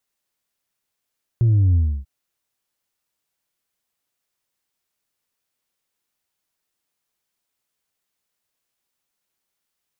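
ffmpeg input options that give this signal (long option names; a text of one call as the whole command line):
ffmpeg -f lavfi -i "aevalsrc='0.224*clip((0.64-t)/0.3,0,1)*tanh(1.26*sin(2*PI*120*0.64/log(65/120)*(exp(log(65/120)*t/0.64)-1)))/tanh(1.26)':duration=0.64:sample_rate=44100" out.wav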